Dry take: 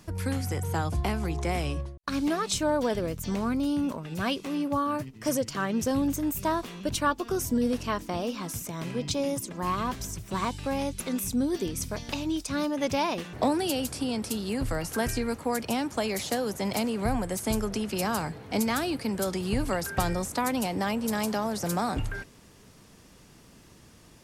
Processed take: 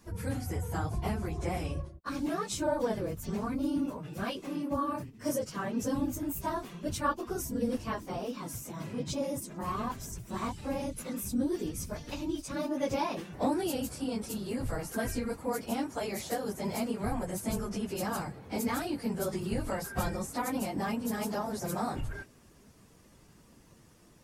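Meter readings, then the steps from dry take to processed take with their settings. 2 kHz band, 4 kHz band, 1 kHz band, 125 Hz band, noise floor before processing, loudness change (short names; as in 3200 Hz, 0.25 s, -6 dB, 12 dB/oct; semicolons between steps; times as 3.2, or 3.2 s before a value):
-6.5 dB, -8.5 dB, -5.0 dB, -4.5 dB, -54 dBFS, -5.0 dB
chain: phase scrambler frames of 50 ms; bell 3500 Hz -4.5 dB 1.7 oct; gain -4.5 dB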